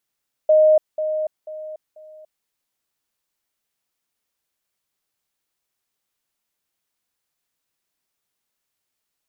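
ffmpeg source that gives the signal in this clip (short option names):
-f lavfi -i "aevalsrc='pow(10,(-10-10*floor(t/0.49))/20)*sin(2*PI*620*t)*clip(min(mod(t,0.49),0.29-mod(t,0.49))/0.005,0,1)':d=1.96:s=44100"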